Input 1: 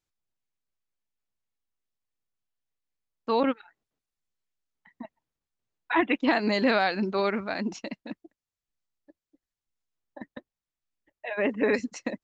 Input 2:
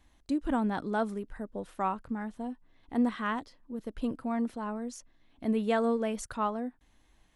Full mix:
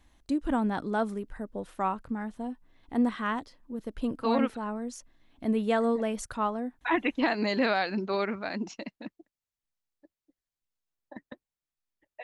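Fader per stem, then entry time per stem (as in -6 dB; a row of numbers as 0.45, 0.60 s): -3.0, +1.5 dB; 0.95, 0.00 s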